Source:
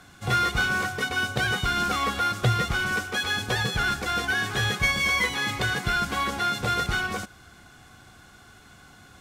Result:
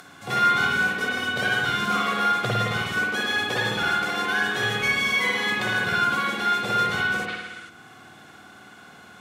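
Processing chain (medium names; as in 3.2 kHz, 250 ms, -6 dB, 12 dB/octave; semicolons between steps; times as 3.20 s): high-pass 180 Hz 12 dB/octave; spring tank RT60 1.1 s, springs 53 ms, chirp 35 ms, DRR -4.5 dB; time-frequency box 7.29–7.69 s, 1.2–11 kHz +8 dB; upward compressor, threshold -38 dBFS; trim -3 dB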